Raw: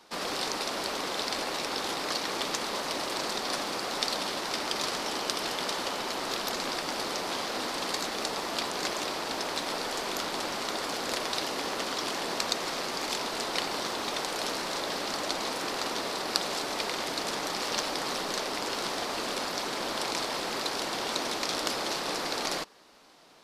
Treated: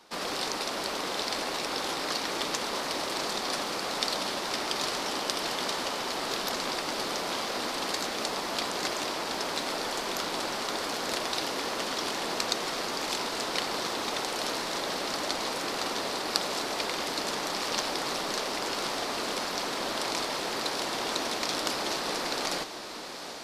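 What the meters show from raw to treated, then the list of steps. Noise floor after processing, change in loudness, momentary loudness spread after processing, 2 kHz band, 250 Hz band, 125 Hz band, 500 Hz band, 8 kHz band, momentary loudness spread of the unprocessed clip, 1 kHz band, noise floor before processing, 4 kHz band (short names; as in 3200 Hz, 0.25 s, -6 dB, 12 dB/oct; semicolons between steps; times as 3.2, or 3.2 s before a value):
-34 dBFS, +0.5 dB, 2 LU, +0.5 dB, +0.5 dB, +0.5 dB, +0.5 dB, +0.5 dB, 2 LU, +0.5 dB, -35 dBFS, +0.5 dB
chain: diffused feedback echo 0.807 s, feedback 69%, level -11 dB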